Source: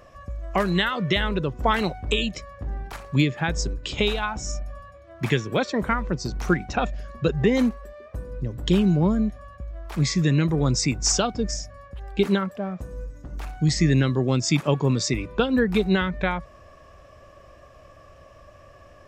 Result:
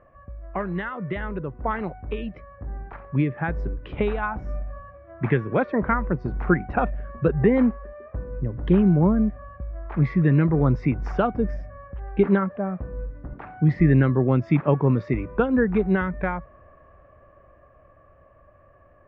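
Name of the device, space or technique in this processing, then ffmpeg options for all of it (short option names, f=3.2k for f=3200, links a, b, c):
action camera in a waterproof case: -filter_complex "[0:a]asettb=1/sr,asplit=3[a][b][c];[a]atrim=end=13.334[d];[b]atrim=start=13.33:end=13.8,asetpts=PTS-STARTPTS,afade=t=in:d=0.004:c=qsin,afade=t=out:st=0.466:d=0.004:c=qsin,highpass=f=100:w=0.5412,highpass=f=100:w=1.3066[e];[c]atrim=start=13.796[f];[d][e]acrossfade=d=0.004:c1=hsin:c2=qsin[g];[g][f]acrossfade=d=0.004:c1=qsin:c2=hsin,lowpass=f=1.9k:w=0.5412,lowpass=f=1.9k:w=1.3066,dynaudnorm=f=320:g=21:m=14.5dB,volume=-5.5dB" -ar 44100 -c:a aac -b:a 128k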